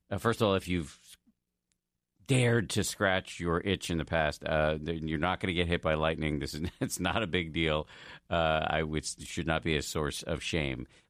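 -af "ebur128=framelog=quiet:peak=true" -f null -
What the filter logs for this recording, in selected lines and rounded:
Integrated loudness:
  I:         -30.9 LUFS
  Threshold: -41.2 LUFS
Loudness range:
  LRA:         1.7 LU
  Threshold: -51.2 LUFS
  LRA low:   -32.0 LUFS
  LRA high:  -30.3 LUFS
True peak:
  Peak:      -13.7 dBFS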